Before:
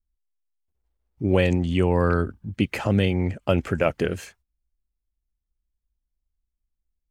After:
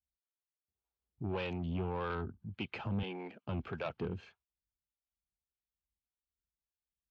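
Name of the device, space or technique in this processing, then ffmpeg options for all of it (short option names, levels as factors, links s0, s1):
guitar amplifier with harmonic tremolo: -filter_complex "[0:a]acrossover=split=420[s0][s1];[s0]aeval=exprs='val(0)*(1-0.7/2+0.7/2*cos(2*PI*1.7*n/s))':c=same[s2];[s1]aeval=exprs='val(0)*(1-0.7/2-0.7/2*cos(2*PI*1.7*n/s))':c=same[s3];[s2][s3]amix=inputs=2:normalize=0,asoftclip=type=tanh:threshold=0.075,highpass=87,equalizer=f=290:t=q:w=4:g=-5,equalizer=f=560:t=q:w=4:g=-7,equalizer=f=1900:t=q:w=4:g=-10,lowpass=f=3800:w=0.5412,lowpass=f=3800:w=1.3066,asettb=1/sr,asplit=3[s4][s5][s6];[s4]atrim=end=3.034[s7];[s5]atrim=start=3.03:end=3.47,asetpts=PTS-STARTPTS,afade=t=in:d=0.004:c=qsin,afade=t=out:st=0.436:d=0.004:c=qsin,highpass=f=220:w=0.5412,highpass=f=220:w=1.3066[s8];[s6]atrim=start=3.466[s9];[s7][s8]acrossfade=d=0.004:c1=hsin:c2=qsin[s10];[s10][s9]acrossfade=d=0.004:c1=qsin:c2=hsin,volume=0.501"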